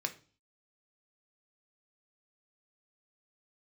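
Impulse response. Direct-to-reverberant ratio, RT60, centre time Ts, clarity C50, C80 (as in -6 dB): 6.0 dB, 0.40 s, 7 ms, 15.0 dB, 21.0 dB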